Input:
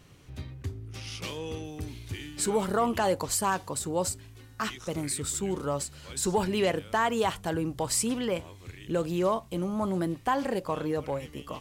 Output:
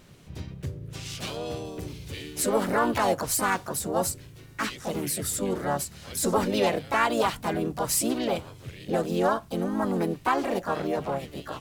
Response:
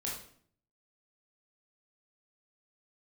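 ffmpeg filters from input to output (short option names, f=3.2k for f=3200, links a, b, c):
-filter_complex "[0:a]asplit=3[a][b][c];[b]asetrate=55563,aresample=44100,atempo=0.793701,volume=-3dB[d];[c]asetrate=66075,aresample=44100,atempo=0.66742,volume=-6dB[e];[a][d][e]amix=inputs=3:normalize=0,bandreject=f=51.53:t=h:w=4,bandreject=f=103.06:t=h:w=4,bandreject=f=154.59:t=h:w=4"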